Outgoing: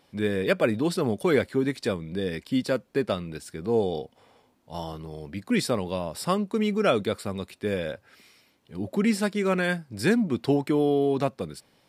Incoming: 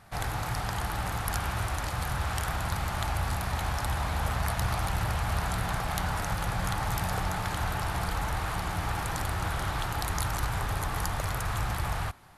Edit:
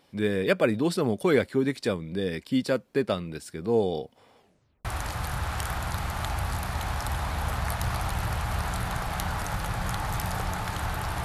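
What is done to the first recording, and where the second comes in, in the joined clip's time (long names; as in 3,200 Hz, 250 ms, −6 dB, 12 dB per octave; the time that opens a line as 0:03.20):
outgoing
0:04.39: tape stop 0.46 s
0:04.85: continue with incoming from 0:01.63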